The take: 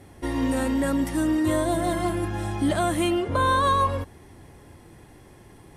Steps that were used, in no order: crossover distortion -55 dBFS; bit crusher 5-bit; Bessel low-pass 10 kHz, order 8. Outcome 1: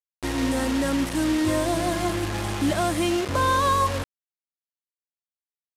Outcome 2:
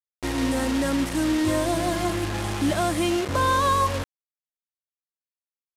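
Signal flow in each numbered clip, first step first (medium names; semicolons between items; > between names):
crossover distortion > bit crusher > Bessel low-pass; bit crusher > crossover distortion > Bessel low-pass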